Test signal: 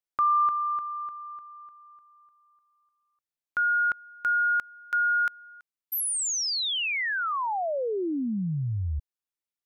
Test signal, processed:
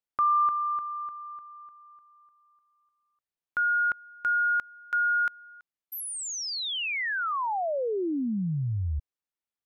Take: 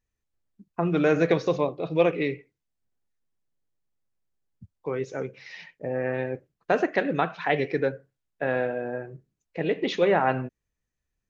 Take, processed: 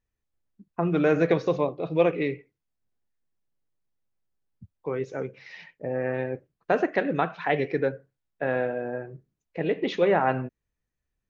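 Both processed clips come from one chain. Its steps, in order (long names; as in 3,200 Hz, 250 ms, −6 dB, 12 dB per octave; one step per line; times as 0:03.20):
high-shelf EQ 4,100 Hz −8 dB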